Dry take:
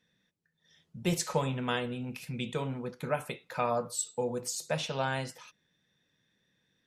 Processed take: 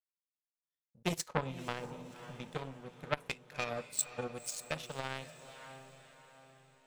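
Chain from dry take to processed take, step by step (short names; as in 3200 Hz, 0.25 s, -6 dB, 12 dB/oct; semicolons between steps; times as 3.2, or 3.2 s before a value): 3.29–4.72 fifteen-band EQ 1000 Hz -9 dB, 2500 Hz +12 dB, 10000 Hz +5 dB; power-law curve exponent 2; 1.28–2.52 high shelf 3100 Hz -11.5 dB; on a send: diffused feedback echo 0.534 s, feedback 47%, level -15 dB; on the sum: core saturation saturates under 1200 Hz; gain +4.5 dB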